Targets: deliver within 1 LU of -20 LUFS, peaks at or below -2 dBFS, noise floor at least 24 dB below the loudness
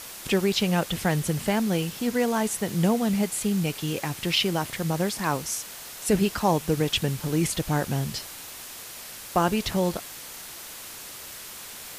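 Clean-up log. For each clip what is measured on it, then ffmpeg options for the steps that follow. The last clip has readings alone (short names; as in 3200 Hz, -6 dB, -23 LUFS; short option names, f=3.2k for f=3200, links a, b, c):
noise floor -41 dBFS; noise floor target -50 dBFS; loudness -26.0 LUFS; peak -9.5 dBFS; loudness target -20.0 LUFS
-> -af "afftdn=nr=9:nf=-41"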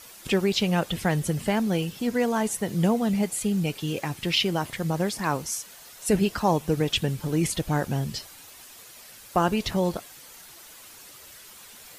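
noise floor -47 dBFS; noise floor target -50 dBFS
-> -af "afftdn=nr=6:nf=-47"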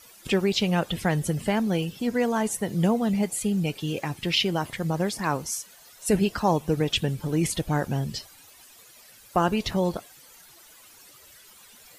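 noise floor -52 dBFS; loudness -26.0 LUFS; peak -10.0 dBFS; loudness target -20.0 LUFS
-> -af "volume=6dB"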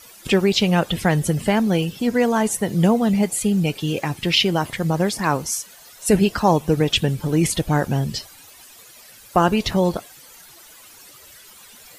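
loudness -20.0 LUFS; peak -4.0 dBFS; noise floor -46 dBFS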